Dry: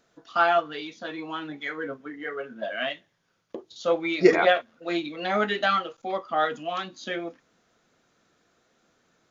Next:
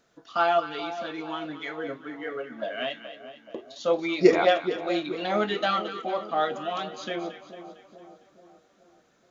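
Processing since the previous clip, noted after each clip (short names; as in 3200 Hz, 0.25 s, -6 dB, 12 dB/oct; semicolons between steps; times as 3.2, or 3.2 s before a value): dynamic EQ 1700 Hz, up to -6 dB, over -40 dBFS, Q 1.7; split-band echo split 1000 Hz, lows 0.427 s, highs 0.227 s, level -11.5 dB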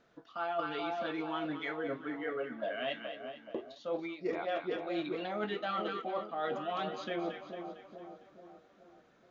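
Bessel low-pass 3100 Hz, order 2; reverse; compressor 12:1, threshold -32 dBFS, peak gain reduction 21.5 dB; reverse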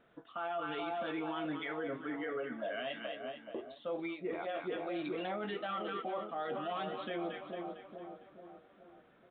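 limiter -31 dBFS, peak gain reduction 8.5 dB; downsampling 8000 Hz; gain +1 dB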